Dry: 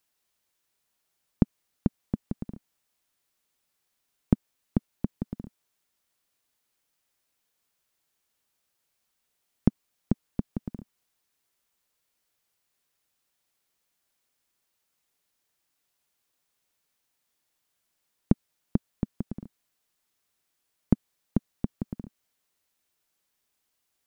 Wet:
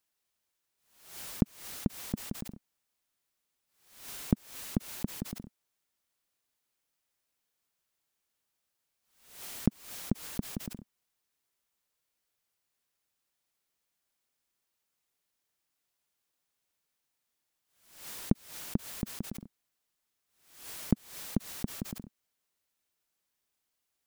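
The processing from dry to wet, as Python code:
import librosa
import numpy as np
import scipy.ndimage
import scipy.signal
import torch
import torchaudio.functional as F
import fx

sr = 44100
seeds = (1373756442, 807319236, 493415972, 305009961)

y = fx.pre_swell(x, sr, db_per_s=94.0)
y = y * librosa.db_to_amplitude(-5.0)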